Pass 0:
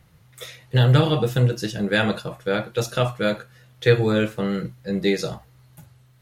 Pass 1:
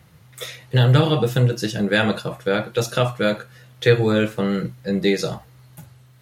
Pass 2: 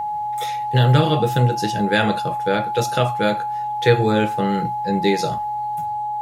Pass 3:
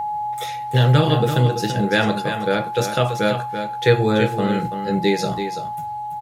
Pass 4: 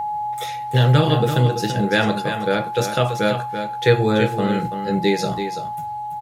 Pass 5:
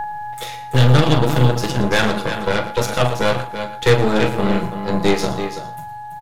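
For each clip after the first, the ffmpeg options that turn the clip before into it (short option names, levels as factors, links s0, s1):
-filter_complex "[0:a]highpass=75,asplit=2[s0][s1];[s1]acompressor=threshold=0.0447:ratio=6,volume=0.794[s2];[s0][s2]amix=inputs=2:normalize=0"
-af "aeval=exprs='val(0)+0.0794*sin(2*PI*840*n/s)':c=same"
-af "aecho=1:1:334:0.376"
-af anull
-filter_complex "[0:a]asplit=2[s0][s1];[s1]adelay=40,volume=0.355[s2];[s0][s2]amix=inputs=2:normalize=0,aeval=exprs='0.794*(cos(1*acos(clip(val(0)/0.794,-1,1)))-cos(1*PI/2))+0.112*(cos(8*acos(clip(val(0)/0.794,-1,1)))-cos(8*PI/2))':c=same,aecho=1:1:115:0.2"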